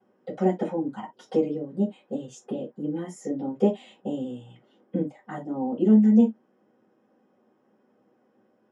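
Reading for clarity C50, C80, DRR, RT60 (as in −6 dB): 14.5 dB, 44.5 dB, −9.5 dB, non-exponential decay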